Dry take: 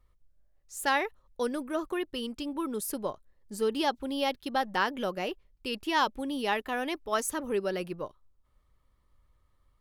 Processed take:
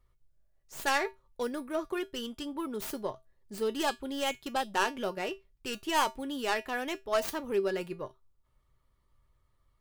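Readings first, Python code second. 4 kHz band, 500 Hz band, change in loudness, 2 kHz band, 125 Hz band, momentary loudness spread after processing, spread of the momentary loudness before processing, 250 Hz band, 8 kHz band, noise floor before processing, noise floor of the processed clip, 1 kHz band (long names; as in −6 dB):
−1.0 dB, −1.0 dB, −1.5 dB, −1.5 dB, −3.0 dB, 10 LU, 10 LU, −3.0 dB, −2.0 dB, −70 dBFS, −72 dBFS, −2.0 dB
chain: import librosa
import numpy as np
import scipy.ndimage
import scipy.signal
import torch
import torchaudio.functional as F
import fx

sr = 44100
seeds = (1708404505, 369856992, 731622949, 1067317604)

y = fx.tracing_dist(x, sr, depth_ms=0.24)
y = fx.comb_fb(y, sr, f0_hz=130.0, decay_s=0.19, harmonics='odd', damping=0.0, mix_pct=70)
y = F.gain(torch.from_numpy(y), 6.0).numpy()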